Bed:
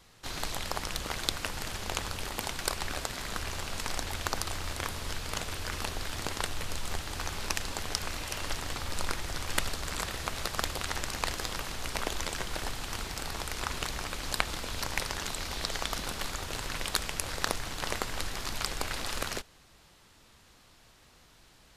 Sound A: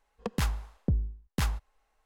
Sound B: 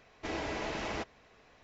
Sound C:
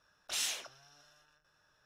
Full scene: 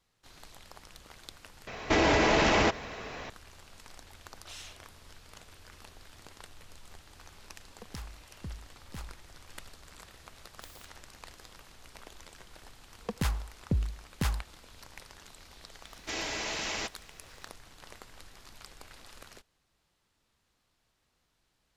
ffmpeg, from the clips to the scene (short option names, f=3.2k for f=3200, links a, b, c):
-filter_complex "[2:a]asplit=2[a][b];[3:a]asplit=2[c][d];[1:a]asplit=2[e][f];[0:a]volume=-17dB[g];[a]alimiter=level_in=34.5dB:limit=-1dB:release=50:level=0:latency=1[h];[c]highshelf=f=7.1k:g=-11.5[i];[d]aeval=exprs='(mod(56.2*val(0)+1,2)-1)/56.2':c=same[j];[b]crystalizer=i=8:c=0[k];[g]asplit=2[l][m];[l]atrim=end=1.674[n];[h]atrim=end=1.63,asetpts=PTS-STARTPTS,volume=-14.5dB[o];[m]atrim=start=3.296[p];[i]atrim=end=1.85,asetpts=PTS-STARTPTS,volume=-8.5dB,afade=t=in:d=0.004:c=hsin,afade=t=out:st=1.846:d=0.004:c=hsin,adelay=4160[q];[e]atrim=end=2.05,asetpts=PTS-STARTPTS,volume=-15dB,afade=t=in:d=0.004:c=hsin,afade=t=out:st=2.046:d=0.004:c=hsin,adelay=7560[r];[j]atrim=end=1.85,asetpts=PTS-STARTPTS,volume=-15.5dB,afade=t=in:d=0.004:c=hsin,afade=t=out:st=1.846:d=0.004:c=hsin,adelay=10300[s];[f]atrim=end=2.05,asetpts=PTS-STARTPTS,volume=-1.5dB,afade=t=in:d=0.004:c=hsin,afade=t=out:st=2.046:d=0.004:c=hsin,adelay=12830[t];[k]atrim=end=1.63,asetpts=PTS-STARTPTS,volume=-4.5dB,afade=t=in:d=0.004:c=hsin,afade=t=out:st=1.626:d=0.004:c=hsin,adelay=15840[u];[n][o]acrossfade=d=0.004:c1=hsin:c2=hsin[v];[v][p]acrossfade=d=0.004:c1=hsin:c2=hsin[w];[w][q][r][s][t][u]amix=inputs=6:normalize=0"